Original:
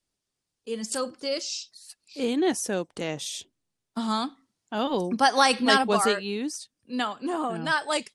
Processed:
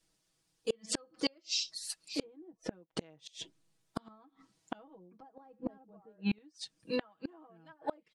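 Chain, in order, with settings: low-pass that closes with the level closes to 460 Hz, closed at -20 dBFS; comb 6.2 ms, depth 96%; inverted gate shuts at -23 dBFS, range -35 dB; trim +3.5 dB

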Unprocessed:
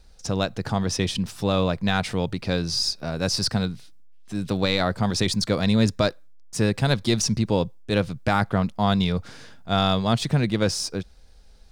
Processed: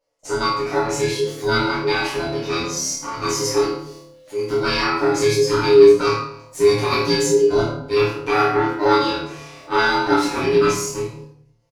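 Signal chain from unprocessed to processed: every band turned upside down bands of 500 Hz; peaking EQ 390 Hz -6.5 dB 0.34 oct; comb 7.1 ms, depth 78%; flutter echo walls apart 4.6 m, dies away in 0.45 s; gate with hold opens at -32 dBFS; high-pass 160 Hz 6 dB/octave; formant shift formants +3 st; treble shelf 4.9 kHz -6 dB; reverberation RT60 0.55 s, pre-delay 7 ms, DRR -5 dB; trim -5 dB

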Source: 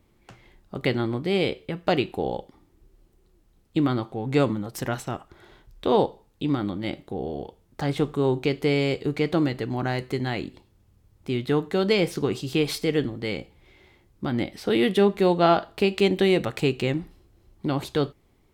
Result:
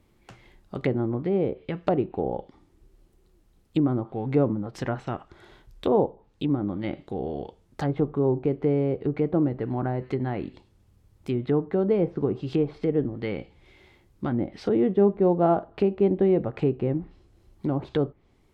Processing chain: low-pass that closes with the level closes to 760 Hz, closed at -21.5 dBFS

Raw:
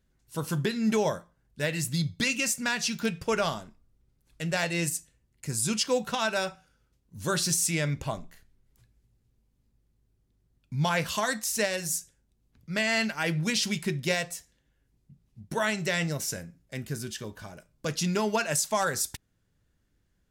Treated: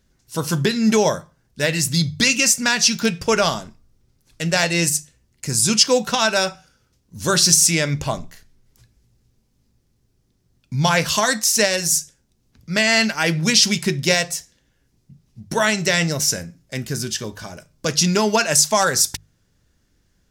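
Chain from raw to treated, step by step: peaking EQ 5.5 kHz +7 dB 0.76 oct; hum notches 50/100/150 Hz; trim +9 dB

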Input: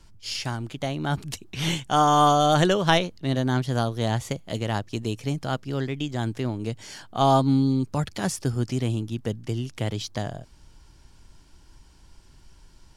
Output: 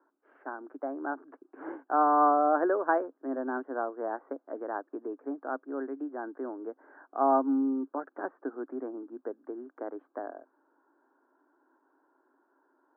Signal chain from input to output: Chebyshev band-pass 270–1600 Hz, order 5; trim -4 dB

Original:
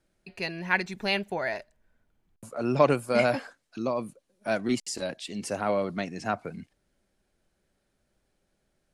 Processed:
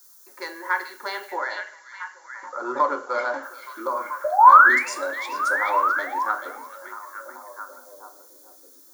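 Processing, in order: local Wiener filter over 9 samples; high-pass 330 Hz 24 dB/octave; high-order bell 1.4 kHz +12 dB 2.9 oct; compression 2:1, threshold -22 dBFS, peak gain reduction 9.5 dB; added noise blue -53 dBFS; 1.31–3.43 s: brick-wall FIR low-pass 7.6 kHz; 4.24–4.89 s: painted sound rise 580–2800 Hz -11 dBFS; static phaser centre 680 Hz, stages 6; repeats whose band climbs or falls 435 ms, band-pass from 3.3 kHz, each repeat -0.7 oct, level -4.5 dB; reverberation RT60 0.50 s, pre-delay 3 ms, DRR 3 dB; trim -3 dB

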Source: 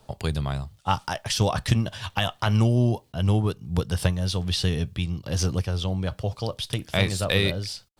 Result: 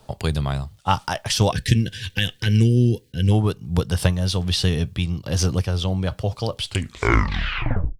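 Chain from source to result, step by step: tape stop on the ending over 1.48 s; time-frequency box 1.52–3.31 s, 530–1500 Hz -22 dB; trim +4 dB

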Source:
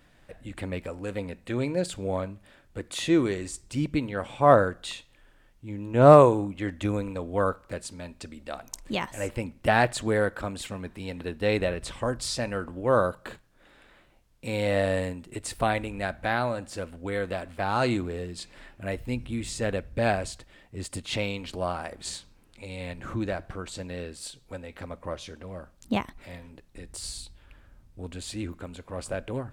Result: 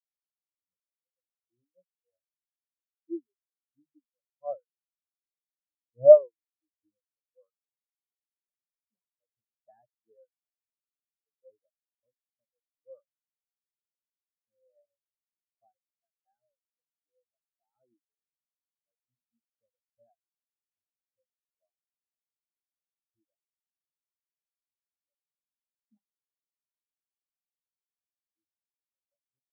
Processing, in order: reverb removal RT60 1.5 s; hum notches 50/100/150/200/250 Hz; spectral contrast expander 4:1

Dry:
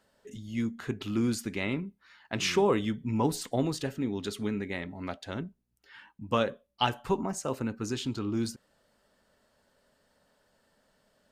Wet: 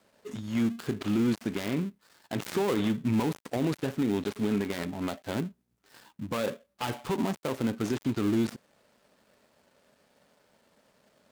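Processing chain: dead-time distortion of 0.23 ms; high-pass 260 Hz 6 dB/octave; bass shelf 350 Hz +6.5 dB; peak limiter -24 dBFS, peak gain reduction 12.5 dB; trim +5.5 dB

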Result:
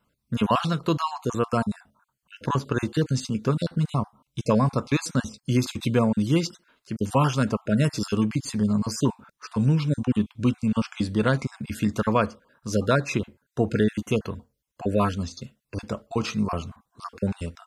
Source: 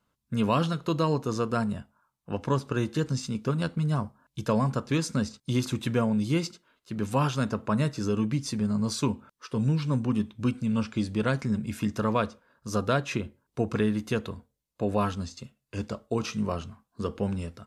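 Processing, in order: random holes in the spectrogram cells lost 28%; 7.84–8.24 s: treble shelf 4 kHz +8 dB; trim +4.5 dB

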